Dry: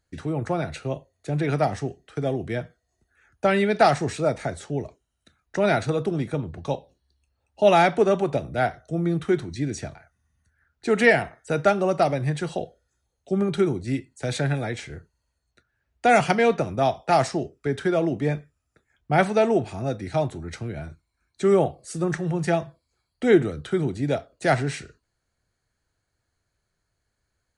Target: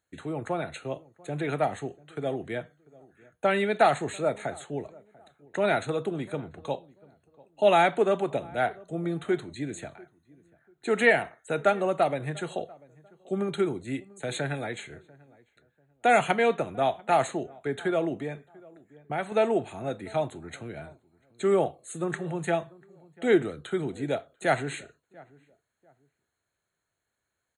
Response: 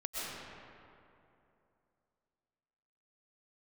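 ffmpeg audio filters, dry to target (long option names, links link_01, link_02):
-filter_complex "[0:a]highpass=frequency=290:poles=1,asplit=2[link_01][link_02];[link_02]adelay=692,lowpass=frequency=1100:poles=1,volume=-23dB,asplit=2[link_03][link_04];[link_04]adelay=692,lowpass=frequency=1100:poles=1,volume=0.29[link_05];[link_01][link_03][link_05]amix=inputs=3:normalize=0,asettb=1/sr,asplit=3[link_06][link_07][link_08];[link_06]atrim=end=18.184[link_09];[link_07]atrim=start=18.18:end=19.32,asetpts=PTS-STARTPTS,afade=type=in:duration=0.004:curve=qsin,afade=type=out:start_time=1.136:duration=0.004:curve=qsin,acompressor=threshold=-31dB:ratio=2[link_10];[link_08]atrim=start=19.316[link_11];[link_09][link_10]acrossfade=duration=0.004:curve1=hsin:curve2=qsin[link_12];[link_12][link_11]acrossfade=duration=0.004:curve1=qsin:curve2=hsin,asuperstop=centerf=5200:order=20:qfactor=2.7,volume=-2.5dB"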